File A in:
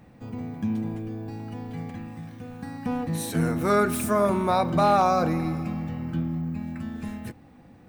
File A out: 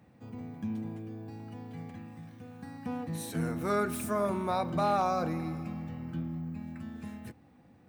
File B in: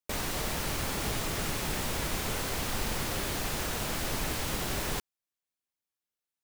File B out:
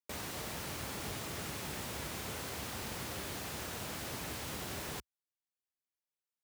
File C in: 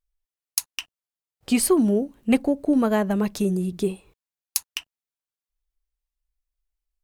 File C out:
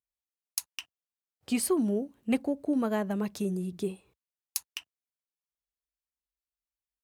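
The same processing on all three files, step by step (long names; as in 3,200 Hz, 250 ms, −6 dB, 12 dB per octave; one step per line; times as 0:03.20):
high-pass filter 61 Hz 24 dB per octave
level −8 dB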